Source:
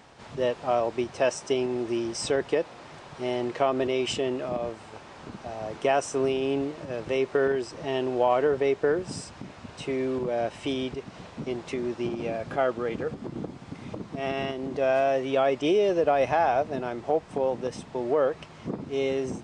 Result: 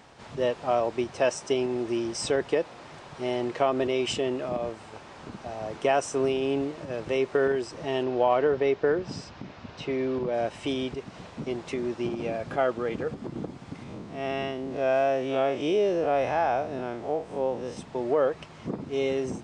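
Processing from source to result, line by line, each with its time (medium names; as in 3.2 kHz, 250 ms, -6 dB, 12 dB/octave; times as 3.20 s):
8.03–10.34 s: low-pass 5.7 kHz 24 dB/octave
13.83–17.77 s: spectral blur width 98 ms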